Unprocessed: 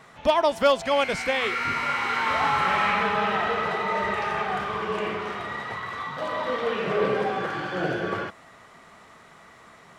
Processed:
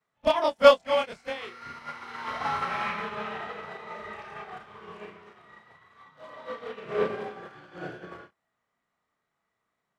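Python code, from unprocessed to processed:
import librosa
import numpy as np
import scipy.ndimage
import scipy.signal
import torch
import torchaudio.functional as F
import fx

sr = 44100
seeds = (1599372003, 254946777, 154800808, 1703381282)

y = fx.frame_reverse(x, sr, frame_ms=67.0)
y = fx.upward_expand(y, sr, threshold_db=-41.0, expansion=2.5)
y = y * librosa.db_to_amplitude(8.0)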